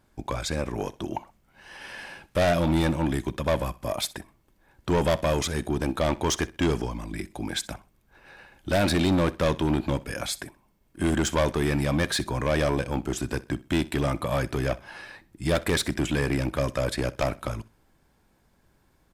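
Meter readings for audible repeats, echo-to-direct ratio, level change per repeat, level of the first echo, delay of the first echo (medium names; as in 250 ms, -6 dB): 2, -19.5 dB, -10.5 dB, -20.0 dB, 63 ms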